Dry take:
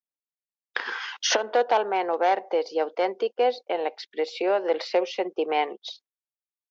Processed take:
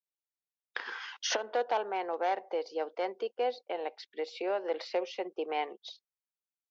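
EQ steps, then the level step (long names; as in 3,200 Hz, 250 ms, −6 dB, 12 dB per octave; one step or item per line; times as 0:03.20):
low-shelf EQ 140 Hz −5 dB
−8.5 dB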